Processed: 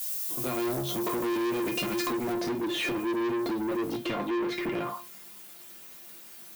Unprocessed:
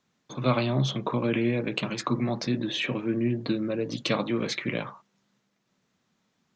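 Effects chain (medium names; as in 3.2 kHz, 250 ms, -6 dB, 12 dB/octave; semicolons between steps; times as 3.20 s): fade-in on the opening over 1.98 s; high-pass 170 Hz 12 dB/octave; tilt EQ -3 dB/octave; added noise violet -49 dBFS; compression, threshold -30 dBFS, peak gain reduction 13.5 dB; feedback comb 350 Hz, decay 0.22 s, harmonics all, mix 90%; waveshaping leveller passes 5; tone controls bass -5 dB, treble +5 dB, from 2.32 s treble -3 dB, from 3.96 s treble -10 dB; trim +5.5 dB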